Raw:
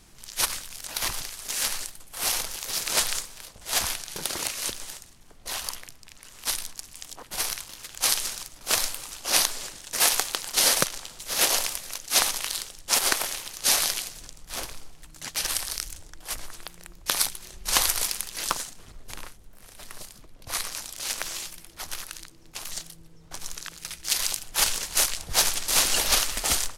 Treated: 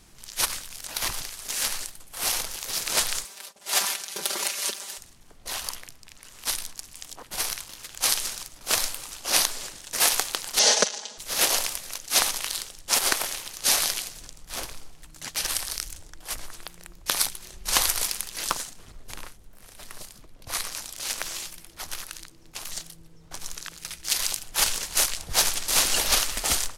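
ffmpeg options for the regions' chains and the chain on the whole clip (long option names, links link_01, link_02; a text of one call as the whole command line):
ffmpeg -i in.wav -filter_complex "[0:a]asettb=1/sr,asplit=3[link_01][link_02][link_03];[link_01]atrim=end=3.244[link_04];[link_02]atrim=start=3.24:end=4.98,asetpts=PTS-STARTPTS,afade=type=in:duration=0.004:curve=qsin,afade=type=out:start_time=1.736:duration=0.004:curve=qsin,agate=range=-33dB:threshold=-44dB:ratio=3:release=100:detection=peak,highpass=300,aecho=1:1:5.1:0.8,atrim=end_sample=76734[link_05];[link_03]atrim=start=4.976[link_06];[link_04][link_05]acrossfade=duration=0.004:curve1=hsin:curve2=qsin[link_07];[link_07][link_06]acrossfade=duration=0.004:curve1=qsin:curve2=hsin,asettb=1/sr,asplit=3[link_08][link_09][link_10];[link_08]atrim=end=10.594[link_11];[link_09]atrim=start=10.59:end=11.18,asetpts=PTS-STARTPTS,afade=type=in:duration=0.004:curve=qsin,afade=type=out:start_time=0.586:duration=0.004:curve=qsin,highpass=frequency=220:width=0.5412,highpass=frequency=220:width=1.3066,equalizer=frequency=340:width_type=q:width=4:gain=-8,equalizer=frequency=490:width_type=q:width=4:gain=8,equalizer=frequency=790:width_type=q:width=4:gain=4,equalizer=frequency=1200:width_type=q:width=4:gain=-6,equalizer=frequency=2300:width_type=q:width=4:gain=-4,equalizer=frequency=6100:width_type=q:width=4:gain=5,lowpass=frequency=7200:width=0.5412,lowpass=frequency=7200:width=1.3066,aecho=1:1:4.8:0.92,atrim=end_sample=26019[link_12];[link_10]atrim=start=11.176[link_13];[link_11][link_12]acrossfade=duration=0.004:curve1=hsin:curve2=qsin[link_14];[link_14][link_13]acrossfade=duration=0.004:curve1=qsin:curve2=hsin" out.wav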